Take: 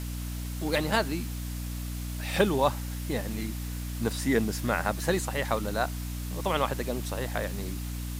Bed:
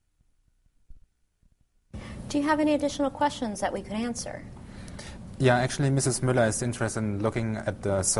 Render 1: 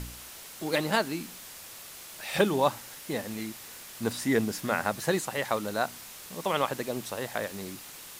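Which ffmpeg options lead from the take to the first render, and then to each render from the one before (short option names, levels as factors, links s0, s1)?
-af "bandreject=f=60:t=h:w=4,bandreject=f=120:t=h:w=4,bandreject=f=180:t=h:w=4,bandreject=f=240:t=h:w=4,bandreject=f=300:t=h:w=4"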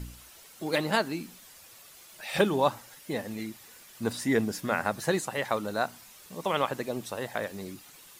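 -af "afftdn=nr=9:nf=-46"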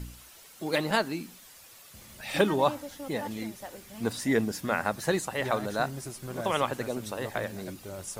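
-filter_complex "[1:a]volume=0.188[s0];[0:a][s0]amix=inputs=2:normalize=0"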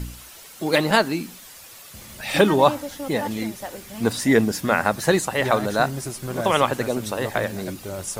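-af "volume=2.66,alimiter=limit=0.708:level=0:latency=1"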